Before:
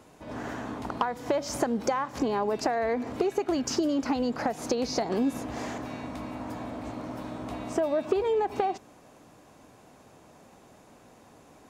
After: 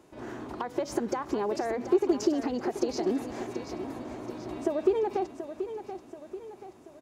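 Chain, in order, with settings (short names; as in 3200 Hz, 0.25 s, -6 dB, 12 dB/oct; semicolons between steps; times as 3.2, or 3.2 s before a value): bell 360 Hz +13 dB 0.25 oct; time stretch by phase-locked vocoder 0.6×; on a send: feedback echo 0.732 s, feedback 48%, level -10 dB; on the sum: gain -4 dB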